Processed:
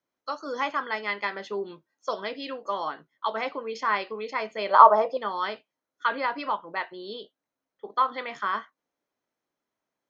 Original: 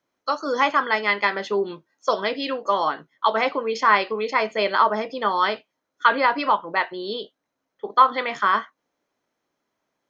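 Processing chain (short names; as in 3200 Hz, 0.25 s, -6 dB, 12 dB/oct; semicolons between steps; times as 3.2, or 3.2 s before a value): 4.69–5.17 band shelf 770 Hz +14.5 dB; gain -8.5 dB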